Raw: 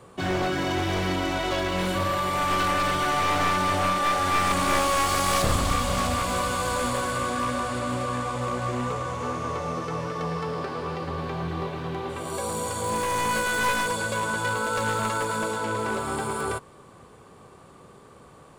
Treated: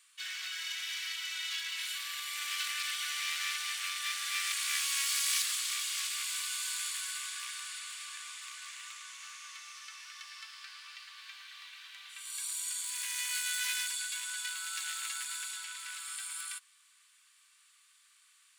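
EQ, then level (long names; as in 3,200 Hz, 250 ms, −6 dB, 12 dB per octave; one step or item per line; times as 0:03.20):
Bessel high-pass filter 2,900 Hz, order 6
0.0 dB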